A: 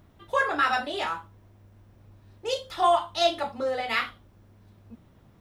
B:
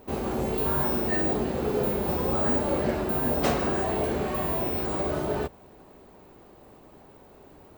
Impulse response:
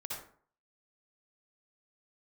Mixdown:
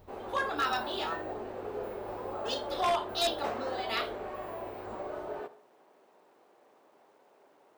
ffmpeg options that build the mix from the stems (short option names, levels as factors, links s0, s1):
-filter_complex "[0:a]equalizer=f=125:t=o:w=1:g=-5,equalizer=f=250:t=o:w=1:g=-6,equalizer=f=500:t=o:w=1:g=-11,equalizer=f=1000:t=o:w=1:g=-3,equalizer=f=2000:t=o:w=1:g=-10,equalizer=f=4000:t=o:w=1:g=5,equalizer=f=8000:t=o:w=1:g=-8,volume=0.708[s0];[1:a]acrusher=bits=8:mix=0:aa=0.000001,highpass=510,aemphasis=mode=reproduction:type=75kf,volume=0.251,asplit=2[s1][s2];[s2]volume=0.2[s3];[2:a]atrim=start_sample=2205[s4];[s3][s4]afir=irnorm=-1:irlink=0[s5];[s0][s1][s5]amix=inputs=3:normalize=0,equalizer=f=4700:w=0.42:g=-4.5,acontrast=36,aeval=exprs='0.0841*(abs(mod(val(0)/0.0841+3,4)-2)-1)':c=same"